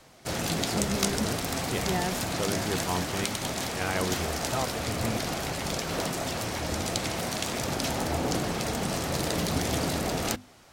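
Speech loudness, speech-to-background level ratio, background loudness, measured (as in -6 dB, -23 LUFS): -33.5 LUFS, -3.5 dB, -30.0 LUFS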